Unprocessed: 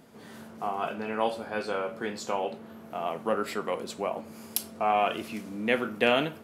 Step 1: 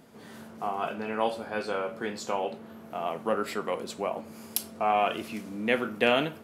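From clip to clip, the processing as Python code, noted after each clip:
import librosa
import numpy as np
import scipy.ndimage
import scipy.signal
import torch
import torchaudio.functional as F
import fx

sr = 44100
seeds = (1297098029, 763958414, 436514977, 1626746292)

y = x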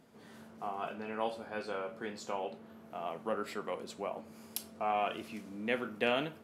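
y = fx.high_shelf(x, sr, hz=12000.0, db=-5.5)
y = F.gain(torch.from_numpy(y), -7.5).numpy()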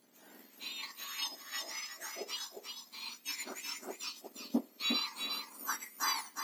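y = fx.octave_mirror(x, sr, pivot_hz=1700.0)
y = y + 10.0 ** (-5.0 / 20.0) * np.pad(y, (int(357 * sr / 1000.0), 0))[:len(y)]
y = fx.transient(y, sr, attack_db=2, sustain_db=-6)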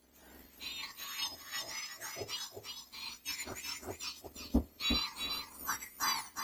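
y = fx.octave_divider(x, sr, octaves=2, level_db=0.0)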